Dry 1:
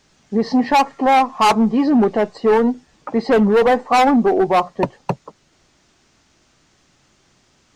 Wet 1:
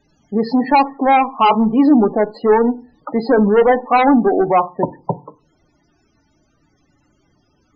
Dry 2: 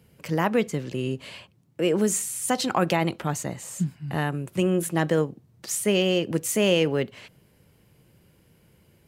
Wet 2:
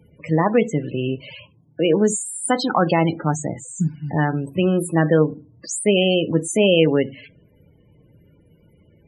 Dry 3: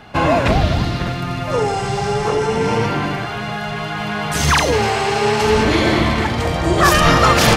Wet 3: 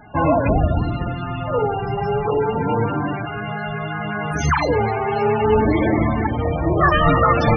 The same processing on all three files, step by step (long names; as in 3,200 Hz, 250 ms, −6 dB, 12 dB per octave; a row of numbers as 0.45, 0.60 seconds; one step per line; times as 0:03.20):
feedback delay network reverb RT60 0.34 s, low-frequency decay 1.25×, high-frequency decay 0.75×, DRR 11.5 dB
spectral peaks only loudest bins 32
normalise the peak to −3 dBFS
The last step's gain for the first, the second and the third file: +1.5, +5.5, −2.0 decibels